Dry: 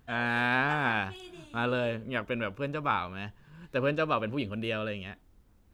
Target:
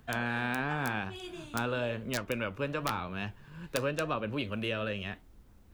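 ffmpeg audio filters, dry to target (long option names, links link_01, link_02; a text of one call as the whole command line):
ffmpeg -i in.wav -filter_complex "[0:a]acrossover=split=90|520[link_01][link_02][link_03];[link_01]acompressor=threshold=-52dB:ratio=4[link_04];[link_02]acompressor=threshold=-40dB:ratio=4[link_05];[link_03]acompressor=threshold=-37dB:ratio=4[link_06];[link_04][link_05][link_06]amix=inputs=3:normalize=0,aeval=exprs='(mod(15*val(0)+1,2)-1)/15':channel_layout=same,flanger=delay=4.5:depth=7.7:regen=-80:speed=0.95:shape=triangular,volume=8.5dB" out.wav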